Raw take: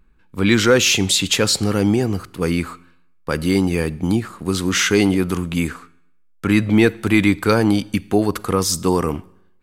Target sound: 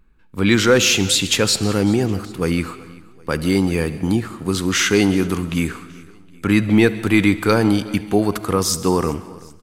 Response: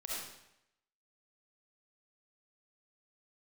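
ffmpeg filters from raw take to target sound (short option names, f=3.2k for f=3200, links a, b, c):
-filter_complex "[0:a]aecho=1:1:383|766|1149:0.0794|0.0373|0.0175,asplit=2[a][b];[1:a]atrim=start_sample=2205,adelay=71[c];[b][c]afir=irnorm=-1:irlink=0,volume=-16dB[d];[a][d]amix=inputs=2:normalize=0"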